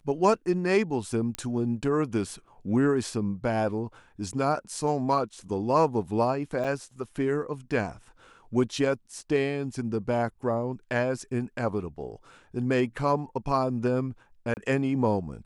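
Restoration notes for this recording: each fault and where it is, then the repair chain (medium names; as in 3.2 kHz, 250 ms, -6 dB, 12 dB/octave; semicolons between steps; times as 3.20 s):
1.35 s: pop -15 dBFS
6.64–6.65 s: dropout 5.8 ms
14.54–14.57 s: dropout 29 ms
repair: de-click; interpolate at 6.64 s, 5.8 ms; interpolate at 14.54 s, 29 ms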